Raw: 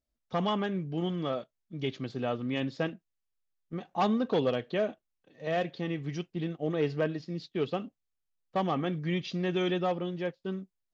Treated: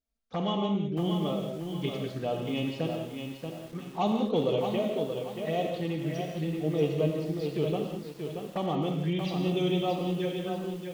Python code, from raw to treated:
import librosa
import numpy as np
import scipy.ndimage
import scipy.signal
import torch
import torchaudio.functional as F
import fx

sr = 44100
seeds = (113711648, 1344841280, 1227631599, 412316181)

y = fx.env_flanger(x, sr, rest_ms=4.4, full_db=-28.5)
y = fx.rev_gated(y, sr, seeds[0], gate_ms=230, shape='flat', drr_db=2.0)
y = fx.echo_crushed(y, sr, ms=631, feedback_pct=35, bits=8, wet_db=-6)